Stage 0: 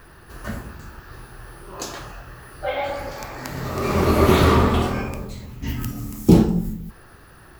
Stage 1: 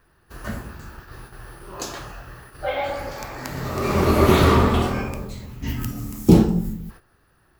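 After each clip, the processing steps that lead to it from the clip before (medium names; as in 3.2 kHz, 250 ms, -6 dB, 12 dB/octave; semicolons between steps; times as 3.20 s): gate -41 dBFS, range -14 dB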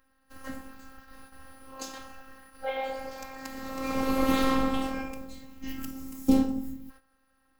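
robot voice 266 Hz; trim -6 dB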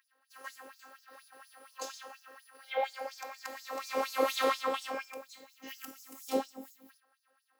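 LFO high-pass sine 4.2 Hz 440–5700 Hz; trim -3 dB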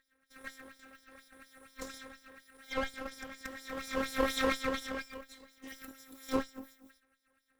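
comb filter that takes the minimum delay 0.55 ms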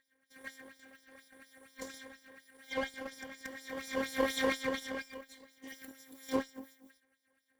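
comb of notches 1.3 kHz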